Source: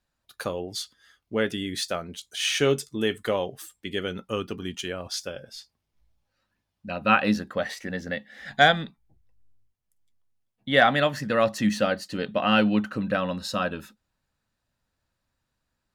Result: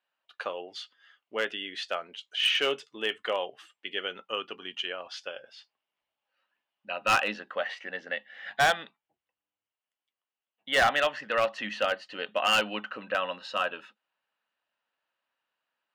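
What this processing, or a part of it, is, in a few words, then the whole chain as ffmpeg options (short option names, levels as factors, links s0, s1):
megaphone: -af "highpass=630,lowpass=2700,equalizer=f=2900:t=o:w=0.28:g=10,asoftclip=type=hard:threshold=0.126"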